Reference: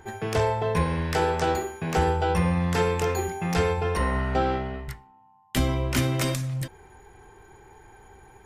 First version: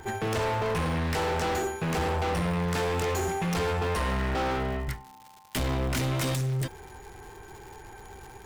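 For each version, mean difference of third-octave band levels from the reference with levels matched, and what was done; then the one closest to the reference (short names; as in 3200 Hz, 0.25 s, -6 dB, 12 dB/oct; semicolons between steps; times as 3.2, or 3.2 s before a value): 6.5 dB: in parallel at -3 dB: limiter -20 dBFS, peak gain reduction 7.5 dB; on the sum: hard clip -26 dBFS, distortion -6 dB; crackle 240/s -40 dBFS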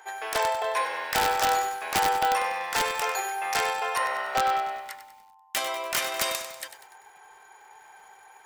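10.5 dB: HPF 640 Hz 24 dB/oct; wrapped overs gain 18.5 dB; lo-fi delay 97 ms, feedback 55%, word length 9-bit, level -10 dB; gain +3 dB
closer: first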